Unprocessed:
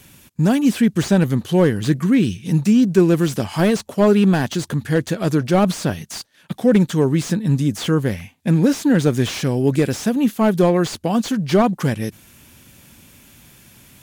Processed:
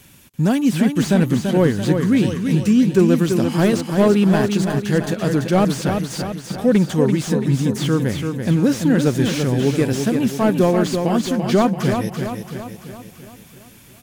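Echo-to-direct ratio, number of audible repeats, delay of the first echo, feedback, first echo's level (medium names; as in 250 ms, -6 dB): -4.5 dB, 6, 337 ms, 53%, -6.0 dB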